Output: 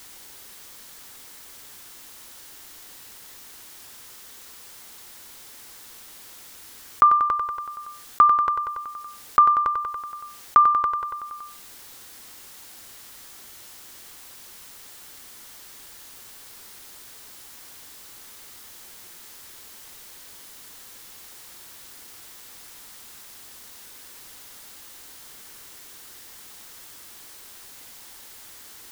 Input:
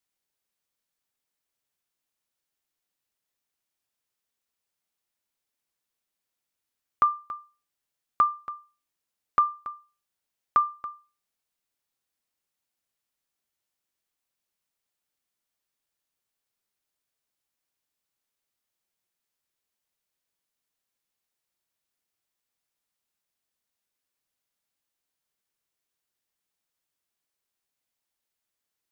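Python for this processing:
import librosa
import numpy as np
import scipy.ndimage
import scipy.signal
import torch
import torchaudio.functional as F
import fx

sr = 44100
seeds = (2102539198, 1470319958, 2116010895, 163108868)

y = fx.graphic_eq_31(x, sr, hz=(160, 630, 2500), db=(-7, -5, -3))
y = fx.echo_feedback(y, sr, ms=94, feedback_pct=56, wet_db=-12.5)
y = fx.env_flatten(y, sr, amount_pct=50)
y = F.gain(torch.from_numpy(y), 6.0).numpy()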